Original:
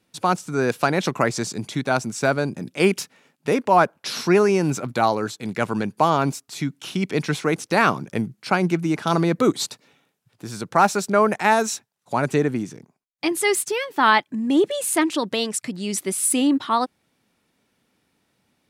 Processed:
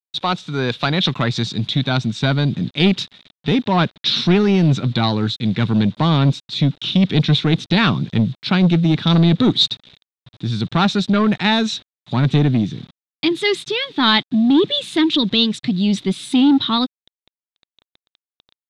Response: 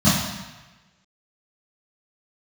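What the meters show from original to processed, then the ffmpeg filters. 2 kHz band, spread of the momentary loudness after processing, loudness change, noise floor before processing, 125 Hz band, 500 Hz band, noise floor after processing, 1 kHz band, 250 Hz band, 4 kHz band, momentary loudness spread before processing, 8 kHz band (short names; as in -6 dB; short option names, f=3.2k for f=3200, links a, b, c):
+0.5 dB, 8 LU, +4.5 dB, -71 dBFS, +11.5 dB, -1.5 dB, under -85 dBFS, -3.0 dB, +7.0 dB, +12.0 dB, 10 LU, -11.0 dB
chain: -af "asubboost=boost=9:cutoff=210,acontrast=85,acrusher=bits=6:mix=0:aa=0.000001,lowpass=f=3.7k:t=q:w=9.1,volume=-6.5dB"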